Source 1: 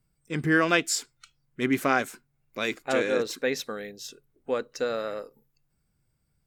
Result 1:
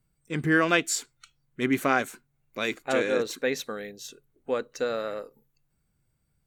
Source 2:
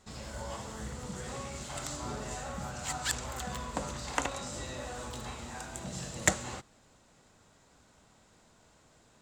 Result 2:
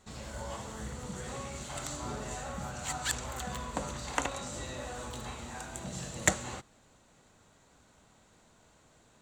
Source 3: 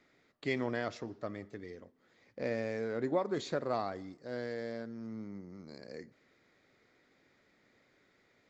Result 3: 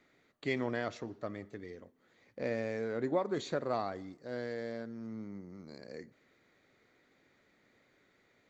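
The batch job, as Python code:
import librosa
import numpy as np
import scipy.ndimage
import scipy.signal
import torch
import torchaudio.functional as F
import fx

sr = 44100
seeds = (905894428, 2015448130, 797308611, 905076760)

y = fx.notch(x, sr, hz=5100.0, q=9.6)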